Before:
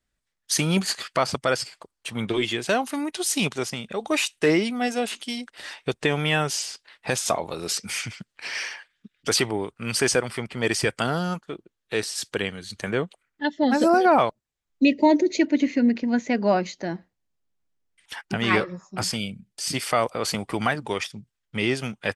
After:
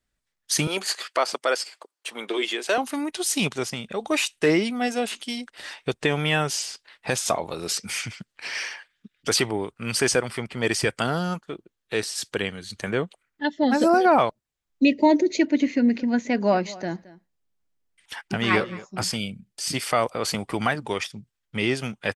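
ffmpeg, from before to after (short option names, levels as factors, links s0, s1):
-filter_complex "[0:a]asettb=1/sr,asplit=3[s0][s1][s2];[s0]atrim=end=0.674[s3];[s1]atrim=start=0.67:end=2.78,asetpts=PTS-STARTPTS,afade=t=in:d=0.004:c=qsin,afade=t=out:st=2.106:d=0.004:c=qsin,highpass=f=330:w=0.5412,highpass=f=330:w=1.3066[s4];[s2]atrim=start=2.776[s5];[s3][s4]acrossfade=d=0.004:c1=hsin:c2=qsin[s6];[s6][s5]acrossfade=d=0.004:c1=qsin:c2=hsin,asplit=3[s7][s8][s9];[s7]afade=t=out:st=15.9:d=0.02[s10];[s8]aecho=1:1:221:0.106,afade=t=in:st=15.9:d=0.02,afade=t=out:st=18.84:d=0.02[s11];[s9]afade=t=in:st=18.84:d=0.02[s12];[s10][s11][s12]amix=inputs=3:normalize=0"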